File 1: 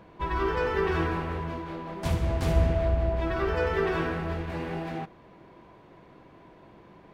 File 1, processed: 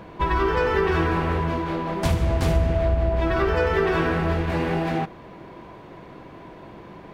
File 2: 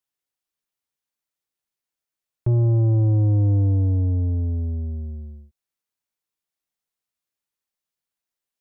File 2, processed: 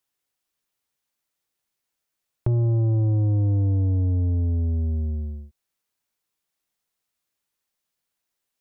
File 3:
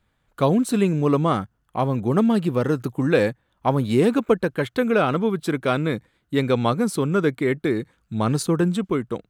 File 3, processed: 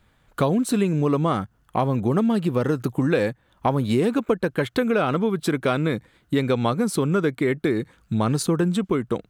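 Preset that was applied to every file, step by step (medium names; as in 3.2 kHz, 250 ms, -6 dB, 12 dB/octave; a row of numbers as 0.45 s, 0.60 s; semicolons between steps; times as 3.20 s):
compression 3:1, threshold -29 dBFS; normalise loudness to -23 LUFS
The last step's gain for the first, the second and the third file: +10.0 dB, +6.0 dB, +8.0 dB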